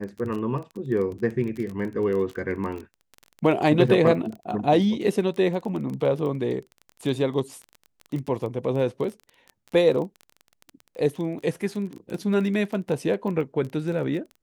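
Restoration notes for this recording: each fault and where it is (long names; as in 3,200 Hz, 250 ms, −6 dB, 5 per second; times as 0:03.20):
surface crackle 20 per second −31 dBFS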